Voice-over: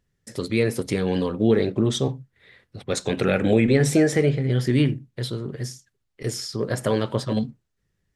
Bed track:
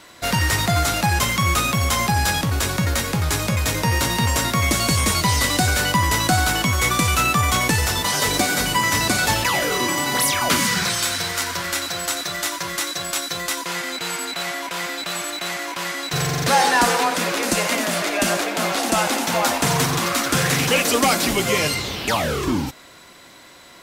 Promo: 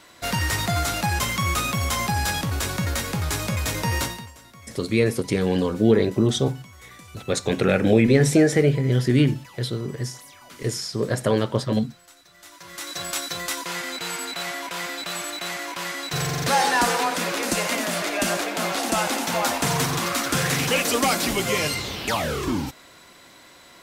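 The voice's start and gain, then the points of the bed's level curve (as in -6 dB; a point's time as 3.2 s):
4.40 s, +1.5 dB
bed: 4.03 s -4.5 dB
4.34 s -27 dB
12.31 s -27 dB
13 s -3.5 dB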